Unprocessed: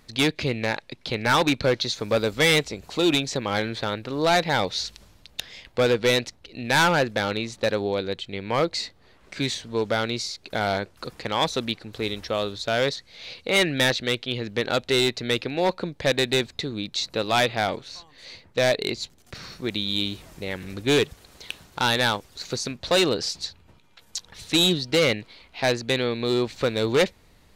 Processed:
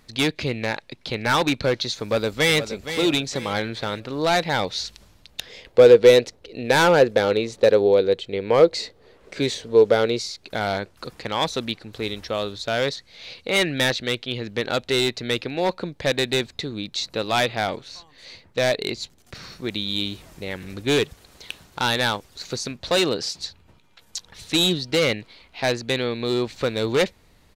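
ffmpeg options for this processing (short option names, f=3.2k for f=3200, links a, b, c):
-filter_complex "[0:a]asplit=2[a][b];[b]afade=t=in:st=1.95:d=0.01,afade=t=out:st=2.59:d=0.01,aecho=0:1:470|940|1410|1880:0.298538|0.119415|0.0477661|0.0191064[c];[a][c]amix=inputs=2:normalize=0,asettb=1/sr,asplit=3[d][e][f];[d]atrim=end=5.464[g];[e]atrim=start=5.46:end=10.19,asetpts=PTS-STARTPTS,afade=t=in:d=0.004:c=qsin,afade=t=out:st=4.726:d=0.004:c=qsin,equalizer=f=460:t=o:w=0.73:g=12.5[h];[f]atrim=start=10.186[i];[g][h]acrossfade=d=0.004:c1=hsin:c2=qsin[j];[j][i]acrossfade=d=0.004:c1=qsin:c2=hsin,asettb=1/sr,asplit=3[k][l][m];[k]atrim=end=22.984[n];[l]atrim=start=22.98:end=23.39,asetpts=PTS-STARTPTS,afade=t=in:d=0.004:c=qsin,afade=t=out:st=0.406:d=0.004:c=qsin,highpass=94[o];[m]atrim=start=23.386[p];[n][o]acrossfade=d=0.004:c1=hsin:c2=qsin[q];[q][p]acrossfade=d=0.004:c1=qsin:c2=hsin"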